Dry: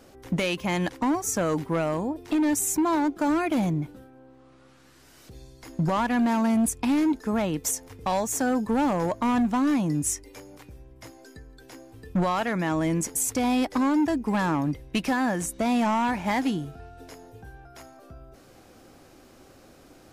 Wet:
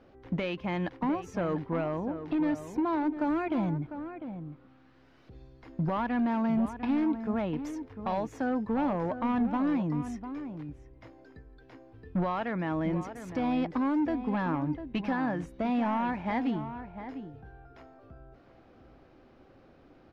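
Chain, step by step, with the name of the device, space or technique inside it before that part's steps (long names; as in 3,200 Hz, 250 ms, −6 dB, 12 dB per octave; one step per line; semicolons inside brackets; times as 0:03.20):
shout across a valley (high-frequency loss of the air 310 metres; slap from a distant wall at 120 metres, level −10 dB)
level −4.5 dB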